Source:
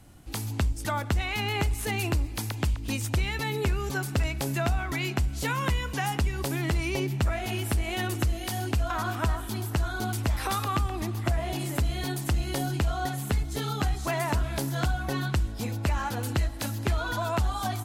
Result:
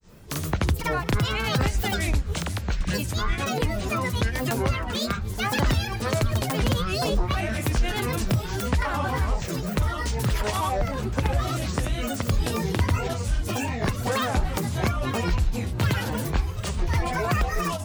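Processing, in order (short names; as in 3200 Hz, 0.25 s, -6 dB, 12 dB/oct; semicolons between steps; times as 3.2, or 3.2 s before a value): grains 0.155 s, grains 20/s, pitch spread up and down by 12 st; gain +6.5 dB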